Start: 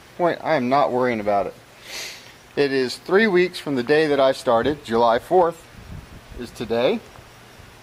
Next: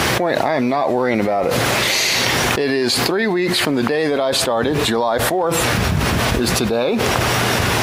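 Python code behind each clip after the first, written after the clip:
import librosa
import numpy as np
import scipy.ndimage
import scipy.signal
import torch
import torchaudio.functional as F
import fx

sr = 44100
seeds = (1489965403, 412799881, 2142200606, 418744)

y = scipy.signal.sosfilt(scipy.signal.butter(2, 73.0, 'highpass', fs=sr, output='sos'), x)
y = fx.env_flatten(y, sr, amount_pct=100)
y = y * 10.0 ** (-5.0 / 20.0)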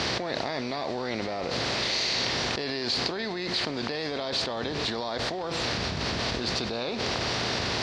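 y = fx.bin_compress(x, sr, power=0.6)
y = fx.ladder_lowpass(y, sr, hz=5600.0, resonance_pct=50)
y = y * 10.0 ** (-8.0 / 20.0)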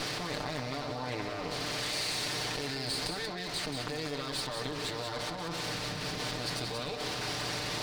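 y = fx.lower_of_two(x, sr, delay_ms=6.7)
y = y + 10.0 ** (-6.5 / 20.0) * np.pad(y, (int(184 * sr / 1000.0), 0))[:len(y)]
y = y * 10.0 ** (-5.5 / 20.0)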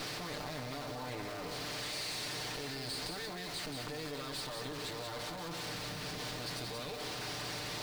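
y = x + 0.5 * 10.0 ** (-35.0 / 20.0) * np.sign(x)
y = y * 10.0 ** (-8.5 / 20.0)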